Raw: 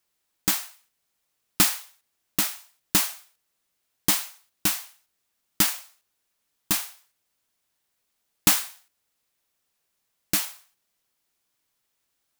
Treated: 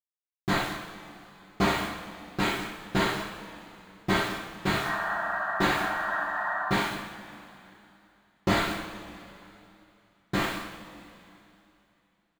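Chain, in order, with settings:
variable-slope delta modulation 32 kbit/s
in parallel at −7.5 dB: wrap-around overflow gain 25.5 dB
on the sum: bad sample-rate conversion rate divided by 8×, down filtered, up hold
low-pass filter 4,800 Hz 12 dB per octave
bit-depth reduction 8 bits, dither none
sound drawn into the spectrogram noise, 0:04.81–0:06.69, 580–1,900 Hz −39 dBFS
on a send: multi-tap delay 64/202 ms −7/−13 dB
on the sum: coupled-rooms reverb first 0.3 s, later 3 s, from −19 dB, DRR −7 dB

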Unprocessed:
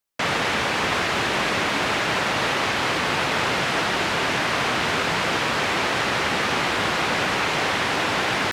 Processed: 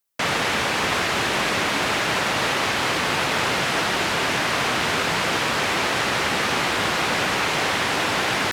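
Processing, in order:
high-shelf EQ 7,700 Hz +8 dB

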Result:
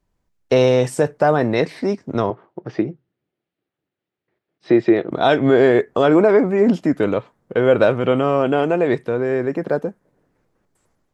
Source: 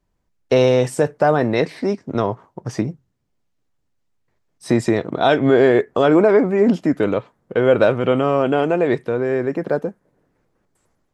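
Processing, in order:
0:02.30–0:05.11: loudspeaker in its box 170–3,700 Hz, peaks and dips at 240 Hz −5 dB, 350 Hz +7 dB, 1,000 Hz −7 dB

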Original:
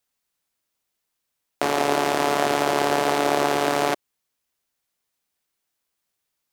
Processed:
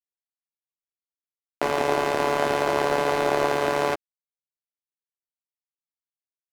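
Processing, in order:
high-shelf EQ 2,900 Hz −8 dB
dead-zone distortion −32.5 dBFS
double-tracking delay 12 ms −6 dB

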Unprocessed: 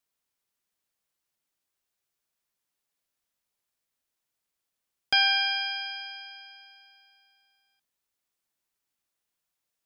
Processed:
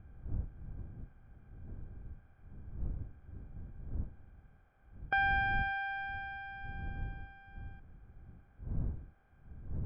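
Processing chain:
compressor on every frequency bin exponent 0.6
wind on the microphone 81 Hz −40 dBFS
low-pass filter 1,700 Hz 24 dB per octave
level −2.5 dB

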